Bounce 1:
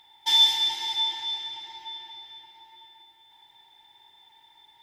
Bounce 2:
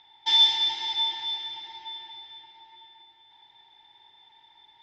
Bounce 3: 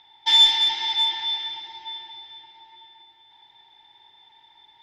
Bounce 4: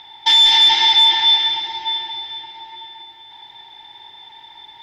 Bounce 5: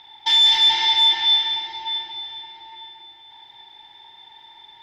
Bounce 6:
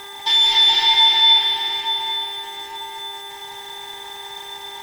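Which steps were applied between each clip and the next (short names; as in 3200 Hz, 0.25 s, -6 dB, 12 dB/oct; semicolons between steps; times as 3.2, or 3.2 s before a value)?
LPF 5200 Hz 24 dB/oct
dynamic EQ 1800 Hz, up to +5 dB, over -41 dBFS, Q 0.72; in parallel at -10 dB: one-sided clip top -22 dBFS
maximiser +17 dB; gain -4 dB
flutter echo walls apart 7.3 m, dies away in 0.32 s; gain -6 dB
zero-crossing step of -35 dBFS; buzz 400 Hz, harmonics 5, -41 dBFS -1 dB/oct; reverb RT60 2.4 s, pre-delay 0.113 s, DRR 0 dB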